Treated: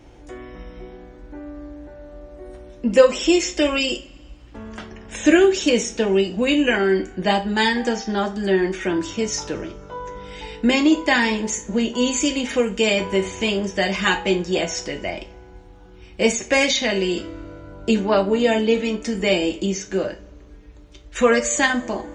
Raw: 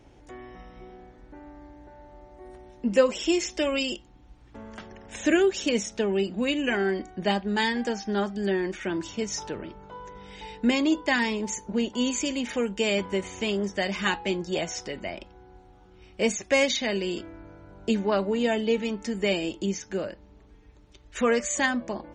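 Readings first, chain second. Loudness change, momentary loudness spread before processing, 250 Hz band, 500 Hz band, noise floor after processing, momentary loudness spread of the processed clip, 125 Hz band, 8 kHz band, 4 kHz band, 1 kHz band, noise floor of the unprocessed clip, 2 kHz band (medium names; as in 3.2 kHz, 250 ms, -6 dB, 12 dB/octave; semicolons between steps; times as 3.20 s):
+7.0 dB, 19 LU, +6.5 dB, +7.0 dB, -45 dBFS, 19 LU, +6.0 dB, +7.0 dB, +7.0 dB, +7.0 dB, -54 dBFS, +7.0 dB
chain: two-slope reverb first 0.26 s, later 1.9 s, from -27 dB, DRR 4 dB; trim +5.5 dB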